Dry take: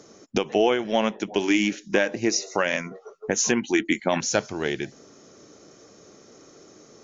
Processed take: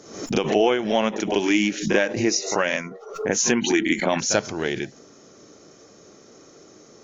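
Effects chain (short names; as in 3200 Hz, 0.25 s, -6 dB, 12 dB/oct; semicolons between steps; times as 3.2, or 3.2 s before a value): pre-echo 38 ms -15 dB; backwards sustainer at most 84 dB/s; gain +1 dB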